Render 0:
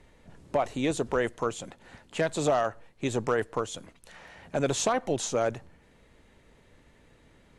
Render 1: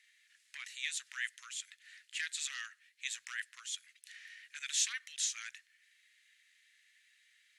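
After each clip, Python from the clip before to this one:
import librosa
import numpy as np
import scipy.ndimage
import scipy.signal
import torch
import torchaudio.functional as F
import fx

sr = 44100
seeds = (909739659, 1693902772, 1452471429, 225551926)

y = scipy.signal.sosfilt(scipy.signal.ellip(4, 1.0, 60, 1800.0, 'highpass', fs=sr, output='sos'), x)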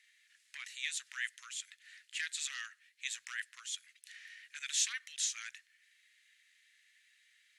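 y = x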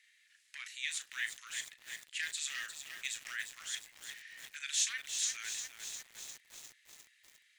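y = fx.doubler(x, sr, ms=36.0, db=-10.5)
y = fx.echo_crushed(y, sr, ms=352, feedback_pct=80, bits=8, wet_db=-7.0)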